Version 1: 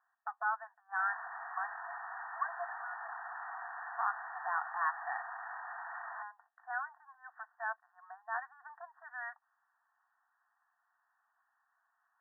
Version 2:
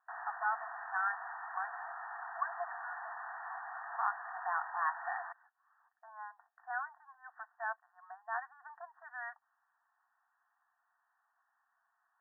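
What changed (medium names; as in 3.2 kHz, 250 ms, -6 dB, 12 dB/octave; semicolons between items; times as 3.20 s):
background: entry -0.90 s; master: add tilt EQ -1.5 dB/octave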